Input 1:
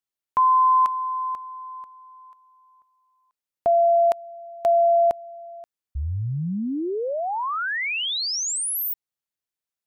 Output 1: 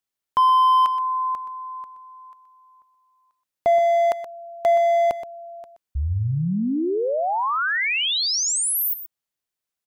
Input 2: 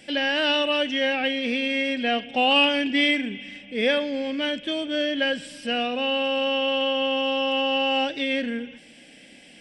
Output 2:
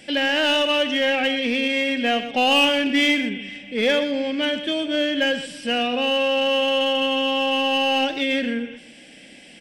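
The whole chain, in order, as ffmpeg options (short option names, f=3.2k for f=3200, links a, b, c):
-filter_complex "[0:a]asplit=2[a][b];[b]aeval=exprs='0.0944*(abs(mod(val(0)/0.0944+3,4)-2)-1)':c=same,volume=-10dB[c];[a][c]amix=inputs=2:normalize=0,aecho=1:1:124:0.251,volume=1dB"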